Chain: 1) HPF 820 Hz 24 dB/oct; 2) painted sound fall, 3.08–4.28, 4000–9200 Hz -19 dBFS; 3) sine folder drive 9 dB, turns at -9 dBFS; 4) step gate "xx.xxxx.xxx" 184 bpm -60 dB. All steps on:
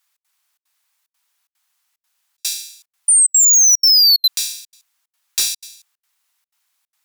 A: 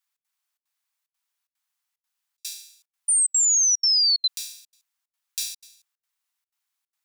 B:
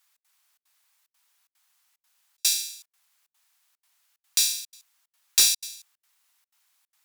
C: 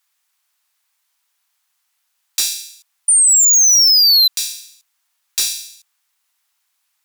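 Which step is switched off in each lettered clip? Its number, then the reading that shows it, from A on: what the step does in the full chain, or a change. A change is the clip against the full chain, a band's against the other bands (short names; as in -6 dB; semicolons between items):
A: 3, distortion -14 dB; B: 2, crest factor change +12.5 dB; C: 4, loudness change +1.0 LU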